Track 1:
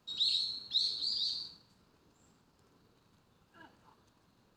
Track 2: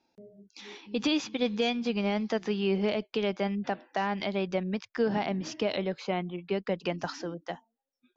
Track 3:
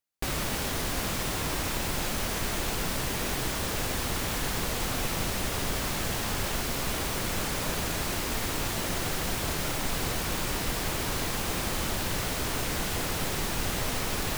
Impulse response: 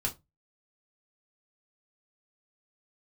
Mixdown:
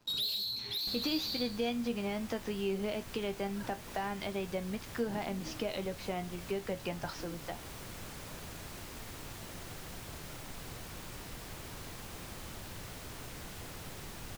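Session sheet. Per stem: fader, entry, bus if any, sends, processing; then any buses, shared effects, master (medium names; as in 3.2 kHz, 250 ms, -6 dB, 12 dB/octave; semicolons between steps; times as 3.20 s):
+2.5 dB, 0.00 s, send -15 dB, peak limiter -26 dBFS, peak gain reduction 5.5 dB; waveshaping leveller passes 3; auto duck -9 dB, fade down 0.45 s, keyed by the second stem
+2.0 dB, 0.00 s, no send, feedback comb 79 Hz, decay 0.18 s, harmonics all, mix 70%
-15.5 dB, 0.65 s, no send, none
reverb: on, RT60 0.20 s, pre-delay 4 ms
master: peaking EQ 110 Hz +4 dB 1.2 oct; compression 1.5:1, threshold -40 dBFS, peak gain reduction 6.5 dB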